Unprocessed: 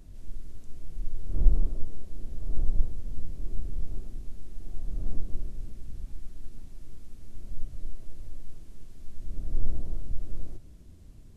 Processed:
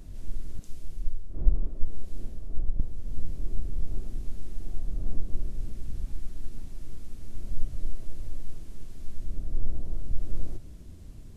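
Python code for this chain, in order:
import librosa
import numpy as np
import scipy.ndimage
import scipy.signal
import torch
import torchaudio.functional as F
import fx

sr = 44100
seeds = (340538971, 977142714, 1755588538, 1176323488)

y = fx.rider(x, sr, range_db=5, speed_s=0.5)
y = fx.band_widen(y, sr, depth_pct=100, at=(0.59, 2.8))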